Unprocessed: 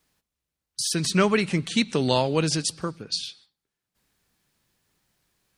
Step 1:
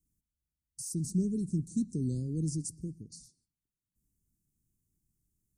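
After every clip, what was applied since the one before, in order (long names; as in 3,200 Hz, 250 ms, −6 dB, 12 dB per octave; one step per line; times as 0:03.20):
inverse Chebyshev band-stop filter 710–3,300 Hz, stop band 50 dB
low-shelf EQ 120 Hz +11 dB
level −9 dB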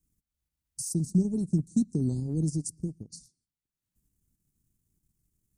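transient designer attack +3 dB, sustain −9 dB
level +4 dB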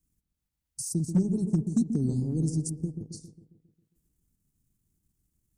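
bucket-brigade delay 135 ms, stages 1,024, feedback 54%, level −7.5 dB
hard clipping −16.5 dBFS, distortion −28 dB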